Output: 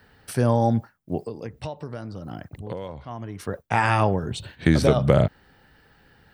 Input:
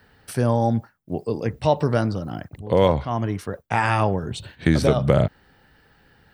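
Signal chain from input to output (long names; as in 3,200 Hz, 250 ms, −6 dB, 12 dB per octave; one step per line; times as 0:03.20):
0:01.22–0:03.40: downward compressor 12 to 1, threshold −30 dBFS, peak gain reduction 19 dB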